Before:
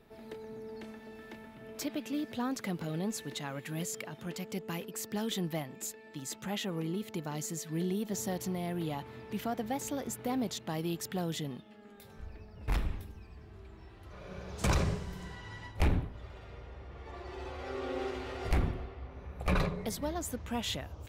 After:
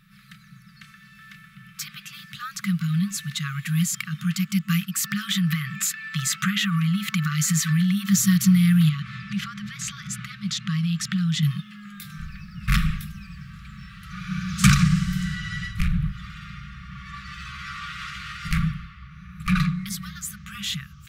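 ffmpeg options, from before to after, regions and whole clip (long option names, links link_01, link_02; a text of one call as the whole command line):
ffmpeg -i in.wav -filter_complex "[0:a]asettb=1/sr,asplit=3[link_01][link_02][link_03];[link_01]atrim=end=5.044[link_04];[link_02]atrim=start=5.04:end=8.1,asetpts=PTS-STARTPTS,afade=type=in:duration=0.004:curve=qsin,afade=type=out:start_time=3.056:duration=0.004:curve=qsin,highpass=47,equalizer=frequency=1400:width_type=o:width=2.6:gain=8.5,acompressor=threshold=-34dB:ratio=12:attack=3.2:release=140:knee=1:detection=peak[link_05];[link_03]atrim=start=8.096[link_06];[link_04][link_05]acrossfade=duration=0.004:curve1=hsin:curve2=qsin[link_07];[link_07][link_06]acrossfade=duration=0.004:curve1=qsin:curve2=hsin,asettb=1/sr,asplit=3[link_08][link_09][link_10];[link_08]atrim=end=8.894[link_11];[link_09]atrim=start=8.89:end=11.43,asetpts=PTS-STARTPTS,afade=type=in:duration=0.004:curve=qsin,afade=type=out:start_time=2.536:duration=0.004:curve=qsin,lowpass=6200,acompressor=threshold=-40dB:ratio=3:attack=3.2:release=140:knee=1:detection=peak[link_12];[link_10]atrim=start=11.426[link_13];[link_11][link_12]acrossfade=duration=0.004:curve1=hsin:curve2=qsin[link_14];[link_14][link_13]acrossfade=duration=0.004:curve1=qsin:curve2=hsin,asettb=1/sr,asplit=3[link_15][link_16][link_17];[link_15]atrim=end=14.714[link_18];[link_16]atrim=start=14.71:end=16.12,asetpts=PTS-STARTPTS,afade=type=in:duration=0.004:curve=qsin,afade=type=out:start_time=1.406:duration=0.004:curve=qsin,asubboost=boost=6:cutoff=140,acompressor=threshold=-29dB:ratio=4:attack=3.2:release=140:knee=1:detection=peak[link_19];[link_17]atrim=start=16.116[link_20];[link_18][link_19]acrossfade=duration=0.004:curve1=hsin:curve2=qsin[link_21];[link_21][link_20]acrossfade=duration=0.004:curve1=qsin:curve2=hsin,lowshelf=frequency=120:width_type=q:width=3:gain=-7,afftfilt=real='re*(1-between(b*sr/4096,210,1100))':imag='im*(1-between(b*sr/4096,210,1100))':win_size=4096:overlap=0.75,dynaudnorm=framelen=690:gausssize=13:maxgain=9dB,volume=7.5dB" out.wav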